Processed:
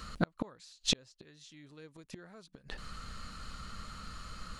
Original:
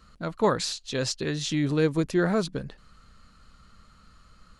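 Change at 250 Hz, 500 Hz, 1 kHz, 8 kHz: -14.5, -19.5, -12.5, -7.0 dB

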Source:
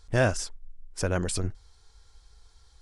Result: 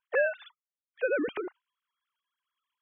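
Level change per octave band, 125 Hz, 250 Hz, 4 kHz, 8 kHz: under -35 dB, -4.5 dB, -13.0 dB, under -40 dB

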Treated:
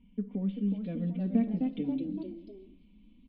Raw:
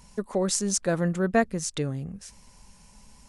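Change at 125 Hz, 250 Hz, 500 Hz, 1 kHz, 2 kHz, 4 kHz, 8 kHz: -5.0 dB, -0.5 dB, -14.5 dB, -18.5 dB, under -20 dB, under -20 dB, under -40 dB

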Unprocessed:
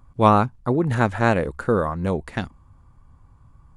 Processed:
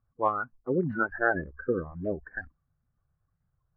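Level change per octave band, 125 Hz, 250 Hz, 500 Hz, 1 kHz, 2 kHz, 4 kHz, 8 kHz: -15.0 dB, -10.5 dB, -8.0 dB, -10.5 dB, -2.0 dB, under -30 dB, n/a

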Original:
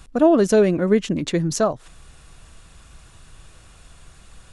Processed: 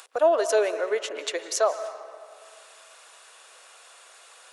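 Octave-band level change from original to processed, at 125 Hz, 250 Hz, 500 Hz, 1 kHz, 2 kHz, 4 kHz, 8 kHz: under -40 dB, -22.0 dB, -4.5 dB, -1.0 dB, -1.0 dB, -1.0 dB, -1.0 dB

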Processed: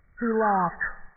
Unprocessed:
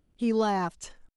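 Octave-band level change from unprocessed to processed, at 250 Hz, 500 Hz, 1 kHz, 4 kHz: -1.0 dB, +1.5 dB, +6.0 dB, under -40 dB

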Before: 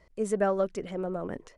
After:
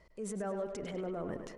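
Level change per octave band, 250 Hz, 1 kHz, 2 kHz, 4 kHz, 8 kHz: -6.5, -10.0, -9.5, -2.0, -3.0 dB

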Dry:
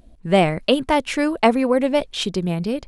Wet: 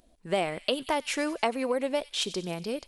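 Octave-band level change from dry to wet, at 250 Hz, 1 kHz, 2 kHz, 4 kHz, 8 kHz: -13.5, -10.0, -8.0, -6.0, -2.0 dB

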